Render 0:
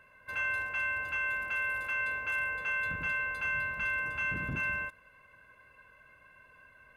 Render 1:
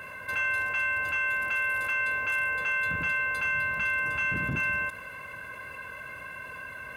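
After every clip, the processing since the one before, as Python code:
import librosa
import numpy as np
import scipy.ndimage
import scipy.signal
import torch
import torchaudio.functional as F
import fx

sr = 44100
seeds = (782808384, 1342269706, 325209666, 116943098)

y = scipy.signal.sosfilt(scipy.signal.butter(2, 68.0, 'highpass', fs=sr, output='sos'), x)
y = fx.high_shelf(y, sr, hz=5800.0, db=5.5)
y = fx.env_flatten(y, sr, amount_pct=50)
y = y * 10.0 ** (3.5 / 20.0)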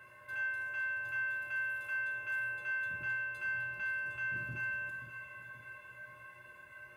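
y = fx.comb_fb(x, sr, f0_hz=120.0, decay_s=0.66, harmonics='odd', damping=0.0, mix_pct=90)
y = fx.echo_feedback(y, sr, ms=530, feedback_pct=52, wet_db=-11.5)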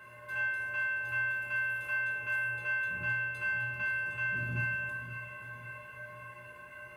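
y = fx.room_shoebox(x, sr, seeds[0], volume_m3=230.0, walls='furnished', distance_m=1.4)
y = y * 10.0 ** (3.0 / 20.0)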